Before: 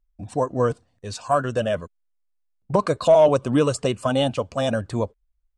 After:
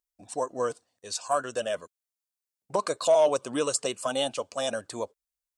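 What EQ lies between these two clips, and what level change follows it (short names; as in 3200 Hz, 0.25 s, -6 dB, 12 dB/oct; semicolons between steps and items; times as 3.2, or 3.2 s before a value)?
HPF 180 Hz 6 dB/oct; tone controls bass -12 dB, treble +11 dB; -5.5 dB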